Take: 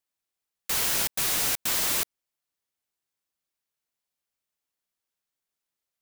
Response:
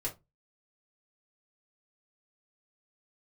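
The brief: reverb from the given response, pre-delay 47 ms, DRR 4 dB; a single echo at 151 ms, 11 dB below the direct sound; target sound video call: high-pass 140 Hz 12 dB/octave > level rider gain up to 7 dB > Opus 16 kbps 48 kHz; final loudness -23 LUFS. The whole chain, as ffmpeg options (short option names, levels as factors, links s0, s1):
-filter_complex "[0:a]aecho=1:1:151:0.282,asplit=2[s0][s1];[1:a]atrim=start_sample=2205,adelay=47[s2];[s1][s2]afir=irnorm=-1:irlink=0,volume=0.501[s3];[s0][s3]amix=inputs=2:normalize=0,highpass=140,dynaudnorm=m=2.24,volume=1.26" -ar 48000 -c:a libopus -b:a 16k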